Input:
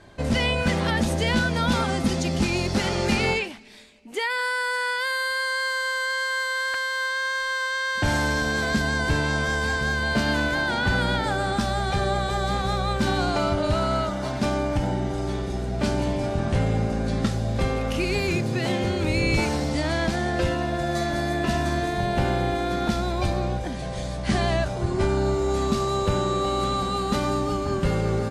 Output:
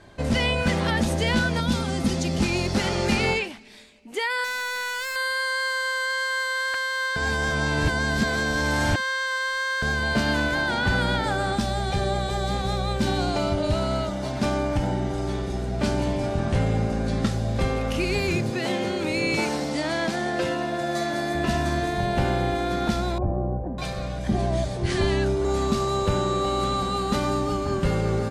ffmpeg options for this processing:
-filter_complex "[0:a]asettb=1/sr,asplit=3[s0][s1][s2];[s0]atrim=end=1.604[s3];[s1]atrim=start=1.6:end=2.38,asetpts=PTS-STARTPTS,afade=t=in:d=0.004:c=qsin,afade=t=out:st=0.776:d=0.004:c=qsin,acrossover=split=440|3000[s4][s5][s6];[s5]acompressor=threshold=0.0251:ratio=6:attack=3.2:release=140:knee=2.83:detection=peak[s7];[s4][s7][s6]amix=inputs=3:normalize=0[s8];[s2]atrim=start=2.376[s9];[s3][s8]acrossfade=d=0.004:c1=hsin:c2=qsin[s10];[s10][s9]acrossfade=d=0.004:c1=qsin:c2=hsin,asettb=1/sr,asplit=3[s11][s12][s13];[s11]atrim=end=4.444[s14];[s12]atrim=start=4.44:end=5.16,asetpts=PTS-STARTPTS,afade=t=in:d=0.004:c=qsin,afade=t=out:st=0.716:d=0.004:c=qsin,aeval=exprs='0.0562*(abs(mod(val(0)/0.0562+3,4)-2)-1)':c=same[s15];[s13]atrim=start=5.156[s16];[s14][s15]acrossfade=d=0.004:c1=hsin:c2=qsin[s17];[s17][s16]acrossfade=d=0.004:c1=qsin:c2=hsin,asettb=1/sr,asplit=3[s18][s19][s20];[s18]atrim=end=11.554[s21];[s19]atrim=start=11.55:end=14.37,asetpts=PTS-STARTPTS,afade=t=in:d=0.004:c=qsin,afade=t=out:st=2.816:d=0.004:c=qsin,equalizer=f=1300:w=1.5:g=-6[s22];[s20]atrim=start=14.366[s23];[s21][s22]acrossfade=d=0.004:c1=hsin:c2=qsin[s24];[s24][s23]acrossfade=d=0.004:c1=qsin:c2=hsin,asettb=1/sr,asplit=3[s25][s26][s27];[s25]atrim=end=18.504[s28];[s26]atrim=start=18.5:end=21.35,asetpts=PTS-STARTPTS,afade=t=in:d=0.004:c=qsin,afade=t=out:st=2.846:d=0.004:c=qsin,highpass=190[s29];[s27]atrim=start=21.346[s30];[s28][s29]acrossfade=d=0.004:c1=hsin:c2=qsin[s31];[s31][s30]acrossfade=d=0.004:c1=qsin:c2=hsin,asettb=1/sr,asplit=3[s32][s33][s34];[s32]atrim=end=23.184[s35];[s33]atrim=start=23.18:end=25.45,asetpts=PTS-STARTPTS,afade=t=in:d=0.004:c=qsin,afade=t=out:st=2.266:d=0.004:c=qsin,acrossover=split=950[s36][s37];[s37]adelay=600[s38];[s36][s38]amix=inputs=2:normalize=0,atrim=end_sample=100107[s39];[s34]atrim=start=25.446[s40];[s35][s39]acrossfade=d=0.004:c1=hsin:c2=qsin[s41];[s41][s40]acrossfade=d=0.004:c1=qsin:c2=hsin,asplit=3[s42][s43][s44];[s42]atrim=end=7.162[s45];[s43]atrim=start=7.158:end=9.822,asetpts=PTS-STARTPTS,areverse[s46];[s44]atrim=start=9.818[s47];[s45][s46]acrossfade=d=0.004:c1=hsin:c2=hsin[s48];[s48][s47]acrossfade=d=0.004:c1=hsin:c2=hsin"

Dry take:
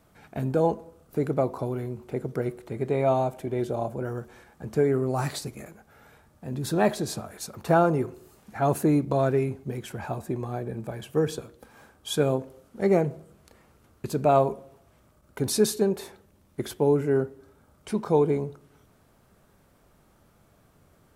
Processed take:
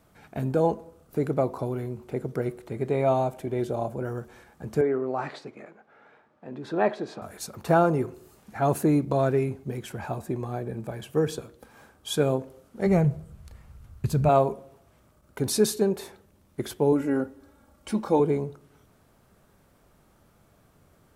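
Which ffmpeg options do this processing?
-filter_complex "[0:a]asettb=1/sr,asplit=3[s0][s1][s2];[s0]atrim=end=4.814[s3];[s1]atrim=start=4.81:end=7.22,asetpts=PTS-STARTPTS,afade=t=in:d=0.004:c=qsin,afade=t=out:st=2.406:d=0.004:c=qsin,highpass=280,lowpass=2500[s4];[s2]atrim=start=7.216[s5];[s3][s4]acrossfade=d=0.004:c1=hsin:c2=qsin[s6];[s6][s5]acrossfade=d=0.004:c1=qsin:c2=hsin,asplit=3[s7][s8][s9];[s7]afade=t=out:st=12.85:d=0.02[s10];[s8]asubboost=boost=10:cutoff=100,afade=t=in:st=12.85:d=0.02,afade=t=out:st=14.28:d=0.02[s11];[s9]afade=t=in:st=14.28:d=0.02[s12];[s10][s11][s12]amix=inputs=3:normalize=0,asettb=1/sr,asplit=3[s13][s14][s15];[s13]atrim=end=16.924[s16];[s14]atrim=start=16.92:end=18.2,asetpts=PTS-STARTPTS,afade=t=in:d=0.004:c=qsin,afade=t=out:st=1.276:d=0.004:c=qsin,aecho=1:1:3.6:0.65,atrim=end_sample=56448[s17];[s15]atrim=start=18.196[s18];[s16][s17]acrossfade=d=0.004:c1=hsin:c2=qsin[s19];[s19][s18]acrossfade=d=0.004:c1=qsin:c2=hsin"

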